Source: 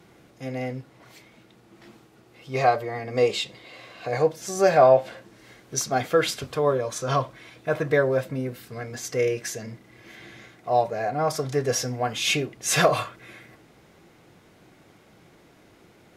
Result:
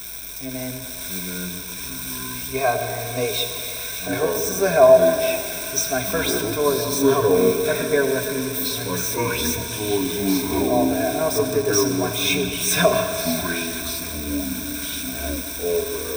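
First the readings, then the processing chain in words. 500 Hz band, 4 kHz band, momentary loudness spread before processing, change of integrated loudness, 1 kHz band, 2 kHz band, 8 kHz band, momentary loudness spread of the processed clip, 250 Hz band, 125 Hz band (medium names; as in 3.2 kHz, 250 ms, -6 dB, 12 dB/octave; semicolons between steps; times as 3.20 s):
+4.5 dB, +7.0 dB, 16 LU, +3.0 dB, 0.0 dB, +4.5 dB, +8.0 dB, 10 LU, +9.5 dB, +2.0 dB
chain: zero-crossing glitches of -23 dBFS; hum 50 Hz, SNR 26 dB; algorithmic reverb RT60 2.6 s, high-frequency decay 0.75×, pre-delay 50 ms, DRR 7 dB; ever faster or slower copies 493 ms, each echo -6 st, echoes 2; rippled EQ curve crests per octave 1.6, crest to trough 15 dB; trim -2.5 dB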